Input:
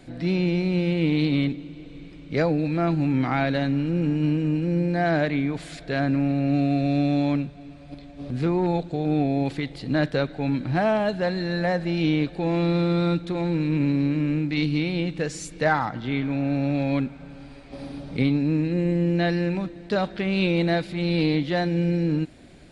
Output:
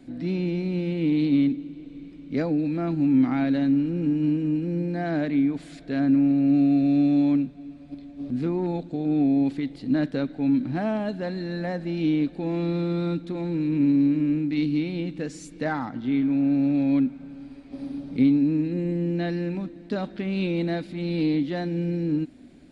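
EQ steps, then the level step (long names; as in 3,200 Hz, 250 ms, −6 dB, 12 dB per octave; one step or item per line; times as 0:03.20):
parametric band 260 Hz +14 dB 0.67 octaves
−8.0 dB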